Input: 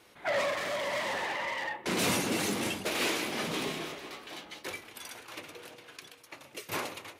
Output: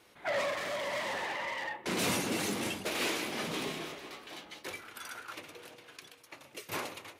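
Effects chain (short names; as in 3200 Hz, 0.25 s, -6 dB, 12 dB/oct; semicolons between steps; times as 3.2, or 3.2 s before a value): 4.79–5.33 bell 1400 Hz +13.5 dB 0.39 oct; gain -2.5 dB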